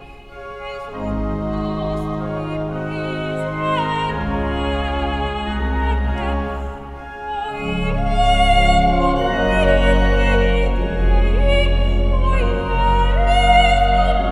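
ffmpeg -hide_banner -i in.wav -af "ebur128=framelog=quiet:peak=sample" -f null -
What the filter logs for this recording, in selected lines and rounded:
Integrated loudness:
  I:         -18.5 LUFS
  Threshold: -28.8 LUFS
Loudness range:
  LRA:         6.8 LU
  Threshold: -39.0 LUFS
  LRA low:   -23.0 LUFS
  LRA high:  -16.2 LUFS
Sample peak:
  Peak:       -1.4 dBFS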